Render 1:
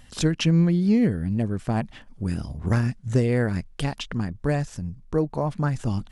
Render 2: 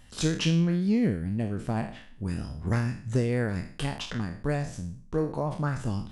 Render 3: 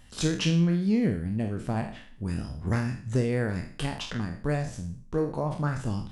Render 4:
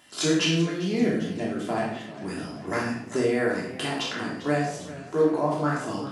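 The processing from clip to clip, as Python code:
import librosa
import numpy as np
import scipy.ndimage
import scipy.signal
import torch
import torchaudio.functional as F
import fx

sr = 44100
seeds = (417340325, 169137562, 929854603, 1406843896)

y1 = fx.spec_trails(x, sr, decay_s=0.48)
y1 = y1 * 10.0 ** (-5.0 / 20.0)
y2 = fx.doubler(y1, sr, ms=47.0, db=-12.5)
y3 = scipy.signal.sosfilt(scipy.signal.butter(2, 330.0, 'highpass', fs=sr, output='sos'), y2)
y3 = fx.room_shoebox(y3, sr, seeds[0], volume_m3=630.0, walls='furnished', distance_m=3.1)
y3 = fx.echo_warbled(y3, sr, ms=395, feedback_pct=64, rate_hz=2.8, cents=103, wet_db=-16.0)
y3 = y3 * 10.0 ** (2.0 / 20.0)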